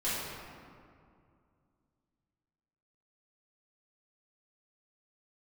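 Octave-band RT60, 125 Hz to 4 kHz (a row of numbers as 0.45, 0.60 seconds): 3.0, 2.9, 2.4, 2.3, 1.7, 1.2 seconds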